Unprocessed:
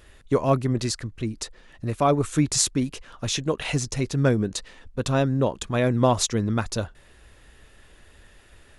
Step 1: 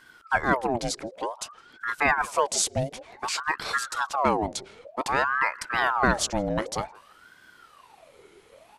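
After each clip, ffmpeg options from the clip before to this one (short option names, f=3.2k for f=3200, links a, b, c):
-filter_complex "[0:a]asplit=2[a][b];[b]adelay=163,lowpass=f=1.4k:p=1,volume=-22.5dB,asplit=2[c][d];[d]adelay=163,lowpass=f=1.4k:p=1,volume=0.3[e];[a][c][e]amix=inputs=3:normalize=0,aeval=exprs='val(0)*sin(2*PI*960*n/s+960*0.6/0.54*sin(2*PI*0.54*n/s))':c=same"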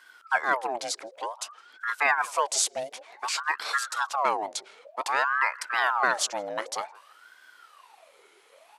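-af "highpass=640"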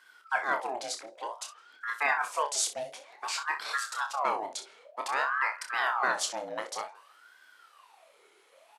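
-af "aecho=1:1:28|63:0.473|0.237,volume=-5dB"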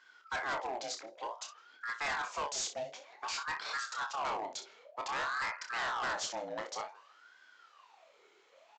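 -af "lowshelf=f=160:g=5.5,aresample=16000,volume=29dB,asoftclip=hard,volume=-29dB,aresample=44100,volume=-3dB"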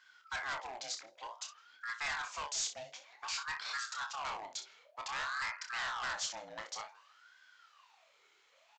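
-af "equalizer=f=380:t=o:w=2.4:g=-13.5,volume=1dB"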